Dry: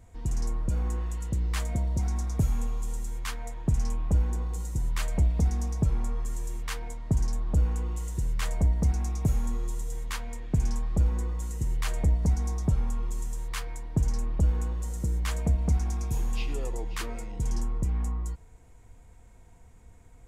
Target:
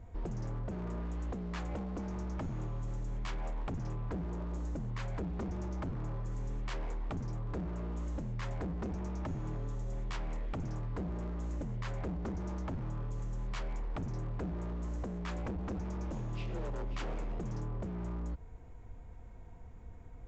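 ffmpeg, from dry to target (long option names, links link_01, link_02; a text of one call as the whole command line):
ffmpeg -i in.wav -af "lowpass=frequency=1300:poles=1,acompressor=threshold=-35dB:ratio=2,aresample=16000,aeval=exprs='0.0178*(abs(mod(val(0)/0.0178+3,4)-2)-1)':channel_layout=same,aresample=44100,volume=3dB" out.wav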